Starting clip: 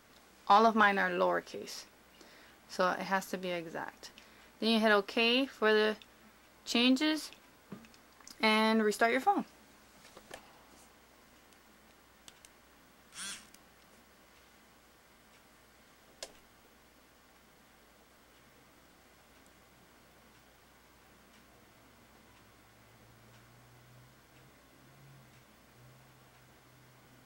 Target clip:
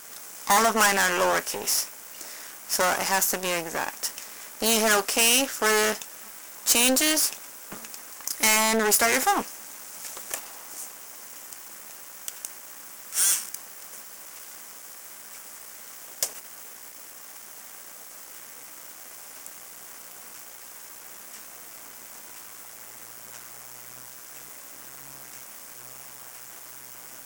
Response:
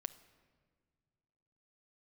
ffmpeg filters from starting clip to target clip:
-filter_complex "[0:a]aeval=exprs='max(val(0),0)':channel_layout=same,asplit=2[link_01][link_02];[link_02]highpass=frequency=720:poles=1,volume=24dB,asoftclip=type=tanh:threshold=-12.5dB[link_03];[link_01][link_03]amix=inputs=2:normalize=0,lowpass=frequency=4400:poles=1,volume=-6dB,aexciter=amount=5.3:drive=7.3:freq=5700,volume=1dB"

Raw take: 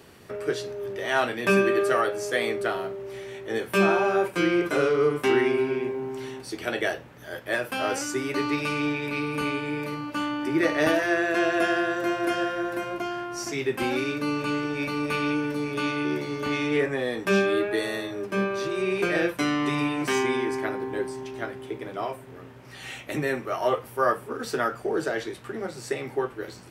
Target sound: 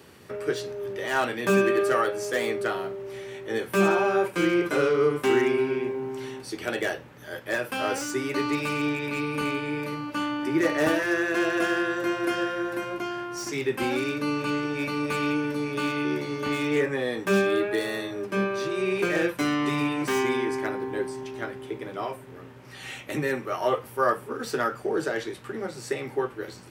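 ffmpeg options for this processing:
ffmpeg -i in.wav -filter_complex "[0:a]highpass=60,bandreject=frequency=680:width=12,acrossover=split=1800[link_01][link_02];[link_02]aeval=exprs='0.0316*(abs(mod(val(0)/0.0316+3,4)-2)-1)':channel_layout=same[link_03];[link_01][link_03]amix=inputs=2:normalize=0" out.wav

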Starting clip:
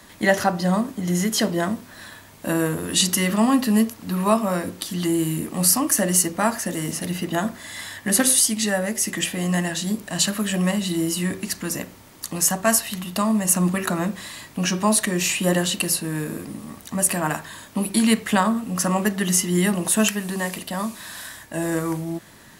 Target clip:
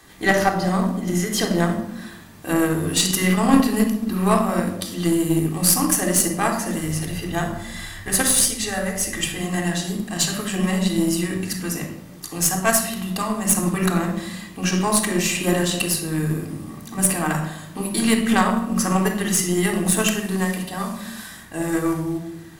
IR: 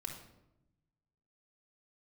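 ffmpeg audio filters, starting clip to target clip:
-filter_complex "[1:a]atrim=start_sample=2205[link_01];[0:a][link_01]afir=irnorm=-1:irlink=0,asplit=3[link_02][link_03][link_04];[link_02]afade=type=out:start_time=6.78:duration=0.02[link_05];[link_03]asubboost=boost=10.5:cutoff=66,afade=type=in:start_time=6.78:duration=0.02,afade=type=out:start_time=9.42:duration=0.02[link_06];[link_04]afade=type=in:start_time=9.42:duration=0.02[link_07];[link_05][link_06][link_07]amix=inputs=3:normalize=0,aeval=exprs='0.473*(cos(1*acos(clip(val(0)/0.473,-1,1)))-cos(1*PI/2))+0.0335*(cos(3*acos(clip(val(0)/0.473,-1,1)))-cos(3*PI/2))+0.0422*(cos(4*acos(clip(val(0)/0.473,-1,1)))-cos(4*PI/2))+0.0075*(cos(6*acos(clip(val(0)/0.473,-1,1)))-cos(6*PI/2))+0.00944*(cos(7*acos(clip(val(0)/0.473,-1,1)))-cos(7*PI/2))':channel_layout=same,volume=5dB"

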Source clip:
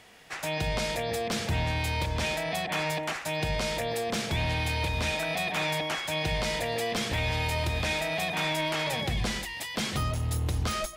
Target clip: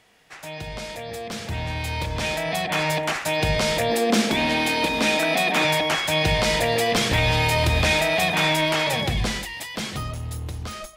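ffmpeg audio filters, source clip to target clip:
ffmpeg -i in.wav -filter_complex "[0:a]asettb=1/sr,asplit=3[link_01][link_02][link_03];[link_01]atrim=end=3.894[link_04];[link_02]atrim=start=3.89:end=5.65,asetpts=PTS-STARTPTS,afade=type=in:duration=0.004:curve=qsin,afade=type=out:start_time=1.756:duration=0.004:curve=qsin,lowshelf=frequency=160:width_type=q:width=3:gain=-13[link_05];[link_03]atrim=start=5.646[link_06];[link_04][link_05]acrossfade=duration=0.004:curve1=hsin:curve2=qsin[link_07];[link_07][link_06]acrossfade=duration=0.004:curve1=qsin:curve2=hsin,dynaudnorm=framelen=360:gausssize=13:maxgain=15dB,flanger=delay=6.2:depth=4.1:regen=-82:speed=0.41:shape=sinusoidal" out.wav

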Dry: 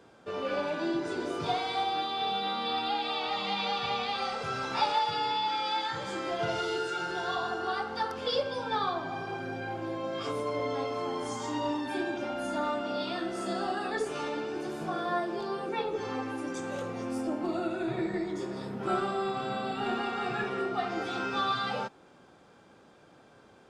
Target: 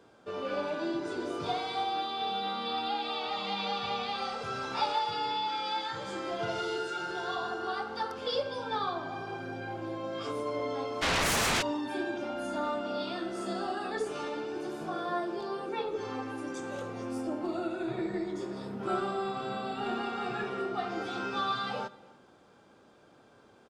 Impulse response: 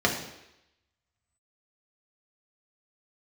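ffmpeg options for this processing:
-filter_complex "[0:a]asplit=2[link_01][link_02];[link_02]adelay=291.5,volume=-24dB,highshelf=frequency=4000:gain=-6.56[link_03];[link_01][link_03]amix=inputs=2:normalize=0,asplit=2[link_04][link_05];[1:a]atrim=start_sample=2205,asetrate=37926,aresample=44100[link_06];[link_05][link_06]afir=irnorm=-1:irlink=0,volume=-29dB[link_07];[link_04][link_07]amix=inputs=2:normalize=0,asplit=3[link_08][link_09][link_10];[link_08]afade=type=out:start_time=11.01:duration=0.02[link_11];[link_09]aeval=exprs='0.0841*sin(PI/2*6.31*val(0)/0.0841)':channel_layout=same,afade=type=in:start_time=11.01:duration=0.02,afade=type=out:start_time=11.61:duration=0.02[link_12];[link_10]afade=type=in:start_time=11.61:duration=0.02[link_13];[link_11][link_12][link_13]amix=inputs=3:normalize=0,volume=-3dB"

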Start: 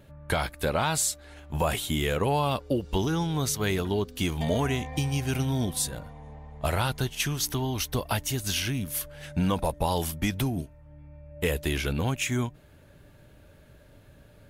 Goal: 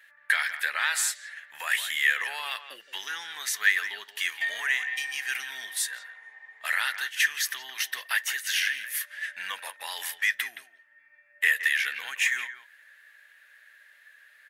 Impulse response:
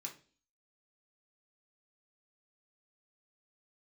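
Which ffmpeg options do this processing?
-filter_complex "[0:a]highpass=frequency=1800:width_type=q:width=11,asplit=2[link_01][link_02];[link_02]adelay=170,highpass=300,lowpass=3400,asoftclip=type=hard:threshold=-14.5dB,volume=-11dB[link_03];[link_01][link_03]amix=inputs=2:normalize=0,asplit=2[link_04][link_05];[1:a]atrim=start_sample=2205,asetrate=66150,aresample=44100[link_06];[link_05][link_06]afir=irnorm=-1:irlink=0,volume=-5.5dB[link_07];[link_04][link_07]amix=inputs=2:normalize=0,volume=-2.5dB"

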